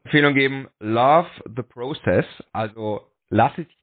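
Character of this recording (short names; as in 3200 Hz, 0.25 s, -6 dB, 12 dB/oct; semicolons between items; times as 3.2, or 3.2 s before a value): tremolo triangle 1 Hz, depth 100%; MP3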